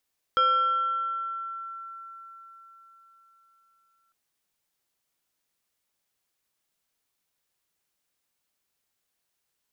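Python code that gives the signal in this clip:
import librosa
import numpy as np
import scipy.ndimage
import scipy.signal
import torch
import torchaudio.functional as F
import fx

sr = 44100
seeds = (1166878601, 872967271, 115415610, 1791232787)

y = fx.fm2(sr, length_s=3.75, level_db=-17.5, carrier_hz=1350.0, ratio=1.38, index=0.54, index_s=2.36, decay_s=4.43, shape='exponential')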